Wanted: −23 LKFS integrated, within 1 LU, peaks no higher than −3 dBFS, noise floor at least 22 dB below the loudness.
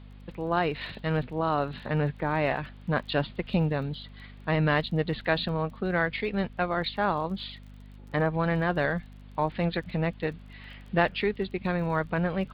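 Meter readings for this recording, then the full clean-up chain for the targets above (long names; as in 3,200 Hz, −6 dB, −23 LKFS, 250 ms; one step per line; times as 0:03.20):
crackle rate 25 per second; mains hum 50 Hz; hum harmonics up to 250 Hz; level of the hum −45 dBFS; integrated loudness −29.0 LKFS; sample peak −10.0 dBFS; target loudness −23.0 LKFS
→ click removal
hum removal 50 Hz, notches 5
level +6 dB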